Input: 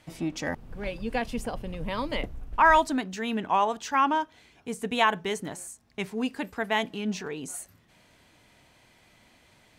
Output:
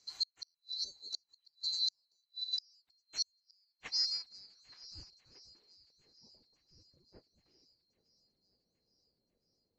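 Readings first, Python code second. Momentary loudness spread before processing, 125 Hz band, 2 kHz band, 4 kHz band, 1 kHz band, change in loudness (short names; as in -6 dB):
15 LU, -27.5 dB, -30.5 dB, +1.0 dB, under -40 dB, -8.5 dB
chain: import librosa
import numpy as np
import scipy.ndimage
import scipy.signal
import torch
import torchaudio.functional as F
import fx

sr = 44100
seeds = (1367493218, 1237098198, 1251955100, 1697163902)

y = fx.band_swap(x, sr, width_hz=4000)
y = fx.spec_box(y, sr, start_s=0.84, length_s=0.27, low_hz=620.0, high_hz=11000.0, gain_db=-13)
y = fx.filter_sweep_lowpass(y, sr, from_hz=6300.0, to_hz=450.0, start_s=3.18, end_s=5.95, q=1.2)
y = fx.echo_swing(y, sr, ms=1367, ratio=1.5, feedback_pct=43, wet_db=-23)
y = fx.gate_flip(y, sr, shuts_db=-20.0, range_db=-39)
y = fx.upward_expand(y, sr, threshold_db=-49.0, expansion=1.5)
y = F.gain(torch.from_numpy(y), -1.5).numpy()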